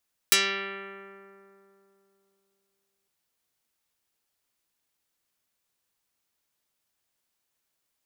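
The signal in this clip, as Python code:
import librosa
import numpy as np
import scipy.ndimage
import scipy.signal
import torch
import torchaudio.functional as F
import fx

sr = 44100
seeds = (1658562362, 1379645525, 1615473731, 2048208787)

y = fx.pluck(sr, length_s=2.76, note=55, decay_s=3.09, pick=0.38, brightness='dark')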